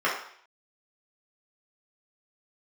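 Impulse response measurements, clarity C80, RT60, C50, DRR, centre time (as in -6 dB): 8.5 dB, 0.60 s, 4.5 dB, -7.0 dB, 36 ms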